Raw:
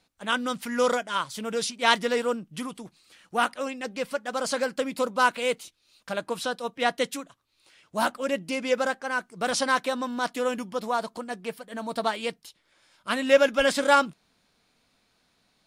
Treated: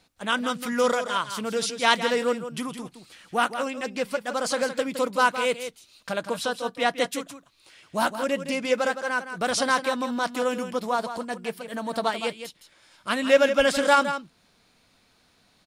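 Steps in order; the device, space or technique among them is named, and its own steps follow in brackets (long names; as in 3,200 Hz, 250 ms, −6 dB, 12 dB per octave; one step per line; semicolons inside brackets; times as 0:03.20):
parallel compression (in parallel at −1.5 dB: downward compressor, threshold −40 dBFS, peak gain reduction 24.5 dB)
on the sum: parametric band 86 Hz +5 dB 0.45 octaves
single-tap delay 164 ms −10 dB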